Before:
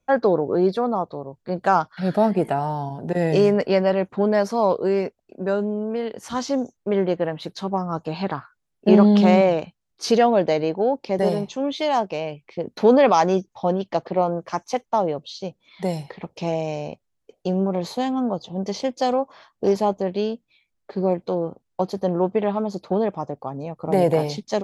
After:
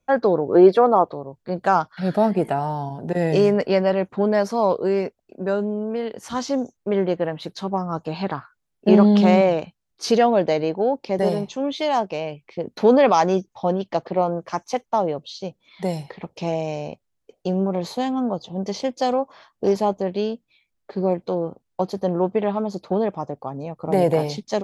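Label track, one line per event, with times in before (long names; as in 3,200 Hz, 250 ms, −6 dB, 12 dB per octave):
0.550000	1.130000	gain on a spectral selection 270–3,400 Hz +8 dB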